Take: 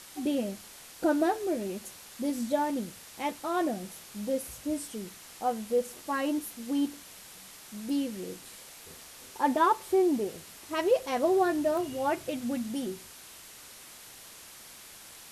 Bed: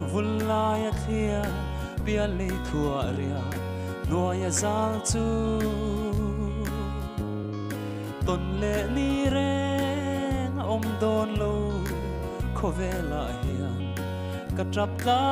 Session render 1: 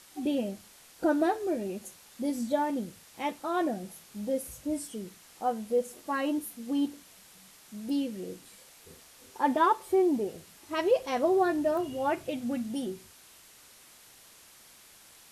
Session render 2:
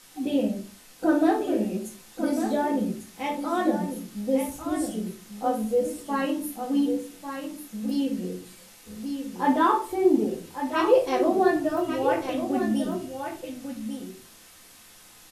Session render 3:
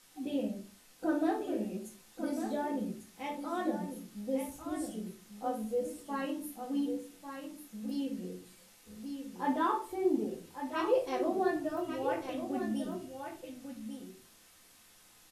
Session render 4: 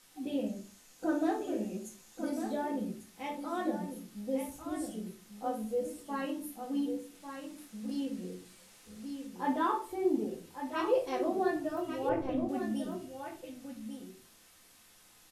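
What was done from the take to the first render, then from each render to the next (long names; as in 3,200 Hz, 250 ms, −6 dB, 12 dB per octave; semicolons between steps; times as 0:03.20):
noise reduction from a noise print 6 dB
single-tap delay 1,147 ms −8 dB; rectangular room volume 210 cubic metres, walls furnished, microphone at 2 metres
level −9.5 dB
0:00.46–0:02.30: parametric band 6,700 Hz +7 dB 0.35 octaves; 0:07.15–0:09.27: linear delta modulator 64 kbit/s, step −52 dBFS; 0:12.09–0:12.49: spectral tilt −3.5 dB per octave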